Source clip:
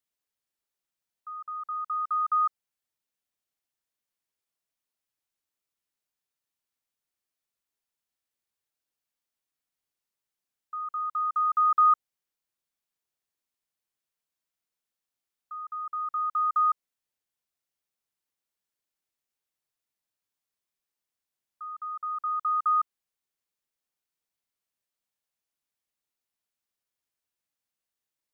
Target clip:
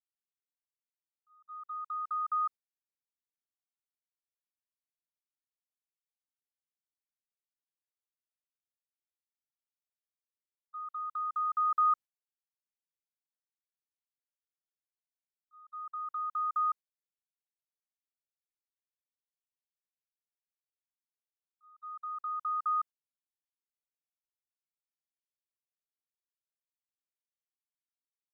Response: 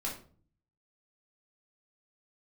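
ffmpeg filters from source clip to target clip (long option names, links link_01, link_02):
-af "agate=range=-26dB:threshold=-36dB:ratio=16:detection=peak,volume=-6.5dB"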